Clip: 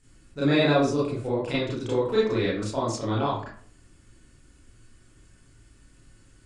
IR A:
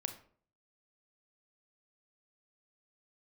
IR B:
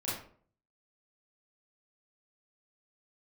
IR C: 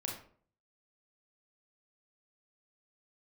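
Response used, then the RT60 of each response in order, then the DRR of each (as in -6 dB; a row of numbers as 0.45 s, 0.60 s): B; 0.50 s, 0.50 s, 0.50 s; 7.0 dB, -9.0 dB, -1.0 dB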